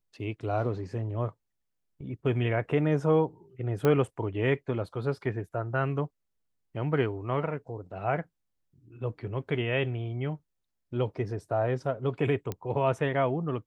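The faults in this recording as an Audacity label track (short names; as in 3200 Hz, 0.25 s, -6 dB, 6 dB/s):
3.850000	3.850000	pop -14 dBFS
12.520000	12.520000	pop -19 dBFS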